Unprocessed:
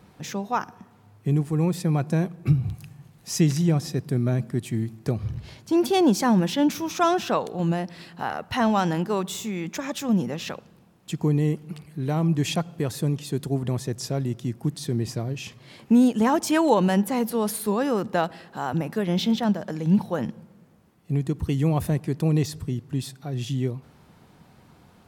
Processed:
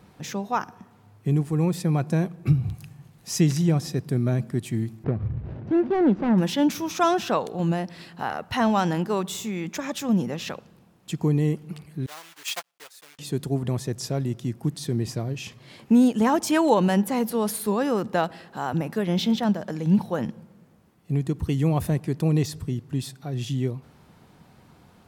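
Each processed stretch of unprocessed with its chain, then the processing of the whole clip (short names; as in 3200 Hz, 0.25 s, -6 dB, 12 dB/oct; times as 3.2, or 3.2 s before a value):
5.04–6.38 median filter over 41 samples + LPF 2100 Hz + upward compressor, threshold -22 dBFS
12.06–13.19 block floating point 3-bit + HPF 1000 Hz + upward expander 2.5:1, over -44 dBFS
whole clip: dry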